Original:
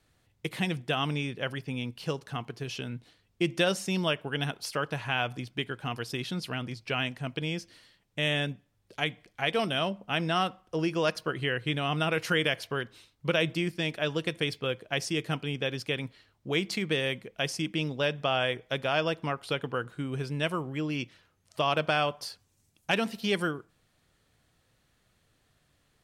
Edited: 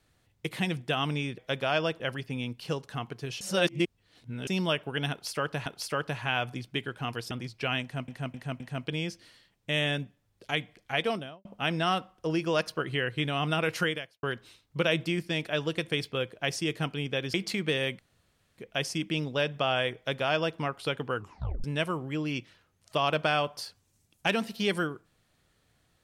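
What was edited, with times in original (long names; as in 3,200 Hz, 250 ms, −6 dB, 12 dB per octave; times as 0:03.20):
0:02.79–0:03.85: reverse
0:04.49–0:05.04: repeat, 2 plays
0:06.14–0:06.58: remove
0:07.09–0:07.35: repeat, 4 plays
0:09.48–0:09.94: fade out and dull
0:12.31–0:12.72: fade out quadratic
0:15.83–0:16.57: remove
0:17.22: splice in room tone 0.59 s
0:18.60–0:19.22: duplicate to 0:01.38
0:19.80: tape stop 0.48 s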